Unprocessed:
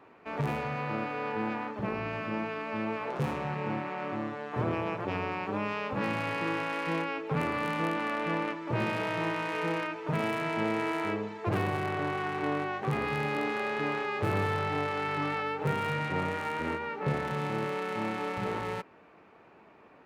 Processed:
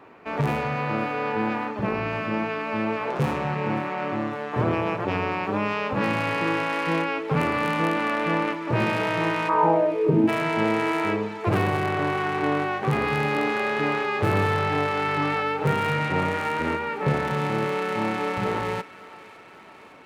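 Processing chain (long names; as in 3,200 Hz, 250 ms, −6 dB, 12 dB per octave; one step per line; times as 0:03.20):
0:09.48–0:10.27: low-pass with resonance 1,200 Hz → 290 Hz, resonance Q 5.1
feedback echo with a high-pass in the loop 557 ms, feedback 76%, high-pass 880 Hz, level −17 dB
level +7 dB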